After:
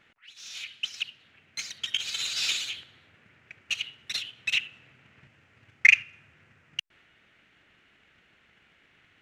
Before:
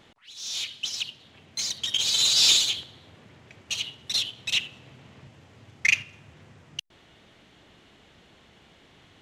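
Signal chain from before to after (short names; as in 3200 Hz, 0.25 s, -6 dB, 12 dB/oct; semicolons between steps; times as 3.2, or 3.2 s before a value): transient shaper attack +8 dB, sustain +2 dB; band shelf 1900 Hz +11 dB 1.3 oct; gain -12.5 dB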